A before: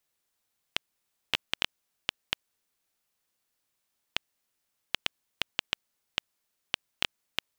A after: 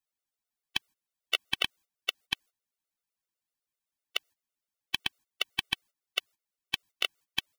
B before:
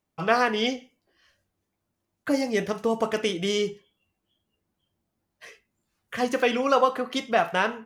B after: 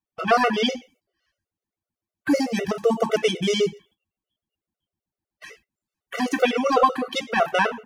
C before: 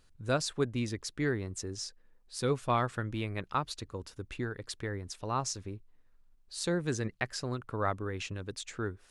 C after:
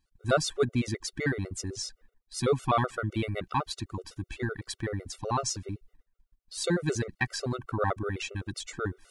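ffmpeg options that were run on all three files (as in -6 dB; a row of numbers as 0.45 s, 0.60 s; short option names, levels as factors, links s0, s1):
-af "acontrast=77,agate=range=0.178:threshold=0.00282:ratio=16:detection=peak,afftfilt=real='re*gt(sin(2*PI*7.9*pts/sr)*(1-2*mod(floor(b*sr/1024/380),2)),0)':imag='im*gt(sin(2*PI*7.9*pts/sr)*(1-2*mod(floor(b*sr/1024/380),2)),0)':win_size=1024:overlap=0.75"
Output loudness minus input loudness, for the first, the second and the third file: +1.5 LU, +3.0 LU, +3.5 LU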